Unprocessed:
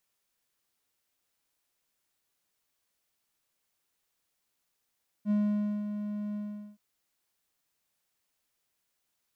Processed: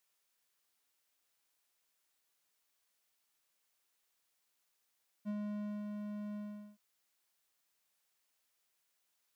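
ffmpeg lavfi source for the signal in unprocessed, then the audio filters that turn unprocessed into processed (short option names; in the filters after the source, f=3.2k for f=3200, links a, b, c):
-f lavfi -i "aevalsrc='0.0891*(1-4*abs(mod(208*t+0.25,1)-0.5))':d=1.523:s=44100,afade=t=in:d=0.055,afade=t=out:st=0.055:d=0.532:silence=0.355,afade=t=out:st=1.1:d=0.423"
-af "lowshelf=f=350:g=-9.5,acompressor=threshold=-37dB:ratio=6"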